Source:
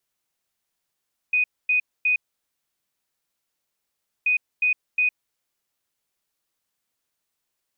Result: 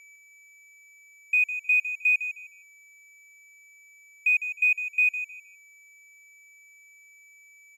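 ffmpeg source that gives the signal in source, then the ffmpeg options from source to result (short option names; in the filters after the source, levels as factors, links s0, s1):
-f lavfi -i "aevalsrc='0.141*sin(2*PI*2490*t)*clip(min(mod(mod(t,2.93),0.36),0.11-mod(mod(t,2.93),0.36))/0.005,0,1)*lt(mod(t,2.93),1.08)':d=5.86:s=44100"
-filter_complex "[0:a]aeval=exprs='val(0)+0.00794*sin(2*PI*2300*n/s)':c=same,aeval=exprs='sgn(val(0))*max(abs(val(0))-0.00376,0)':c=same,asplit=2[s0][s1];[s1]aecho=0:1:155|310|465:0.299|0.0716|0.0172[s2];[s0][s2]amix=inputs=2:normalize=0"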